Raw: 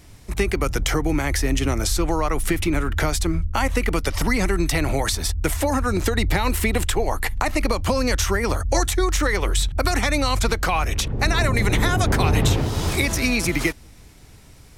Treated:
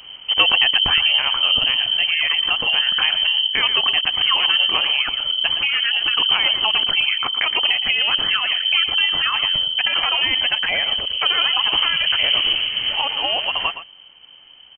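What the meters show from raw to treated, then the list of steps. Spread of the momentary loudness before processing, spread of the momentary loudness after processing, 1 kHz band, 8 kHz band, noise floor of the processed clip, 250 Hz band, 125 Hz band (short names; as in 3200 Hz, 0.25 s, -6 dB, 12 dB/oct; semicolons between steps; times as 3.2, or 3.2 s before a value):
4 LU, 5 LU, -1.5 dB, under -40 dB, -45 dBFS, -18.5 dB, under -20 dB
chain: vocal rider 2 s; on a send: echo 0.117 s -11.5 dB; on the sum: inverted band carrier 3100 Hz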